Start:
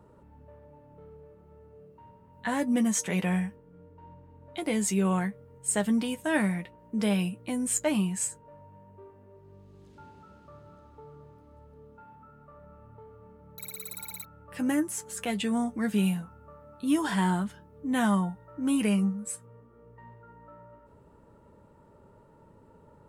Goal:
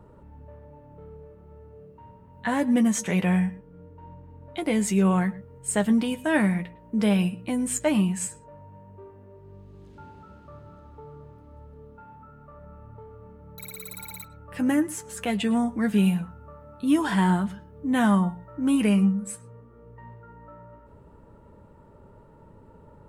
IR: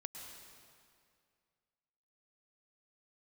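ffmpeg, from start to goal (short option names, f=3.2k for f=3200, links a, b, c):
-filter_complex "[0:a]lowshelf=f=77:g=8.5,asplit=2[a][b];[1:a]atrim=start_sample=2205,afade=t=out:st=0.17:d=0.01,atrim=end_sample=7938,lowpass=4.4k[c];[b][c]afir=irnorm=-1:irlink=0,volume=-0.5dB[d];[a][d]amix=inputs=2:normalize=0"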